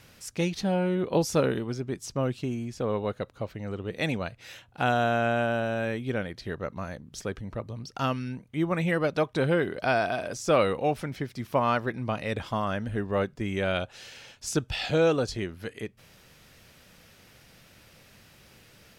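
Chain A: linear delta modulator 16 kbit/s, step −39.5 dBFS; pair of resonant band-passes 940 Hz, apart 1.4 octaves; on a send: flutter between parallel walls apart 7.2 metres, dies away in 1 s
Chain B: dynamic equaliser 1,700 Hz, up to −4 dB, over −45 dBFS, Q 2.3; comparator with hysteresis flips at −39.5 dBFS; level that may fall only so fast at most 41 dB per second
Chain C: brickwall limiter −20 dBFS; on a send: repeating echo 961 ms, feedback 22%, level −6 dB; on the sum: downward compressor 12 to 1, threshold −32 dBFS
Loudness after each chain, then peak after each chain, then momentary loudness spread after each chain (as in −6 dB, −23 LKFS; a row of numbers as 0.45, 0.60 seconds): −37.0, −31.0, −37.0 LKFS; −19.5, −20.0, −22.5 dBFS; 18, 4, 7 LU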